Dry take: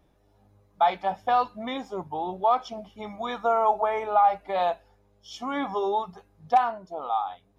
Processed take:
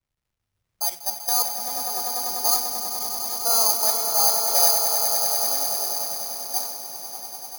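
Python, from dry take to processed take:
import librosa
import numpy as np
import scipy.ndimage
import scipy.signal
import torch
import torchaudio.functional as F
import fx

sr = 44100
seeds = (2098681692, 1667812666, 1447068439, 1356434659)

p1 = fx.fade_out_tail(x, sr, length_s=2.29)
p2 = fx.low_shelf(p1, sr, hz=180.0, db=-8.5)
p3 = fx.level_steps(p2, sr, step_db=13)
p4 = (np.kron(scipy.signal.resample_poly(p3, 1, 8), np.eye(8)[0]) * 8)[:len(p3)]
p5 = fx.dmg_crackle(p4, sr, seeds[0], per_s=370.0, level_db=-34.0)
p6 = p5 + fx.echo_swell(p5, sr, ms=98, loudest=8, wet_db=-7, dry=0)
p7 = fx.band_widen(p6, sr, depth_pct=100)
y = p7 * librosa.db_to_amplitude(-5.0)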